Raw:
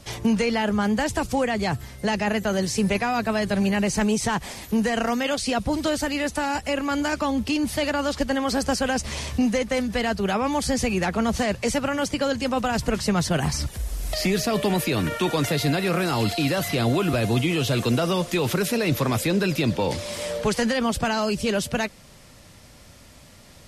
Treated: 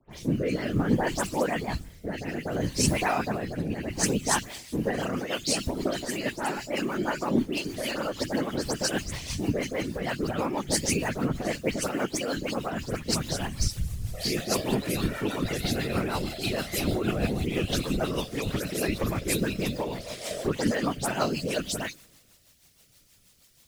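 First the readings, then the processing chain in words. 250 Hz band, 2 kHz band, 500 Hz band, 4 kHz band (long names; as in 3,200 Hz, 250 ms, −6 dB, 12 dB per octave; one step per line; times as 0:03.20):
−6.0 dB, −5.5 dB, −5.5 dB, −4.0 dB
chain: brickwall limiter −18 dBFS, peak gain reduction 7 dB
mains-hum notches 50/100/150/200/250/300 Hz
background noise white −49 dBFS
all-pass dispersion highs, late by 115 ms, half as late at 2,900 Hz
random phases in short frames
rotating-speaker cabinet horn 0.6 Hz, later 6.3 Hz, at 0:03.70
multiband upward and downward expander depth 70%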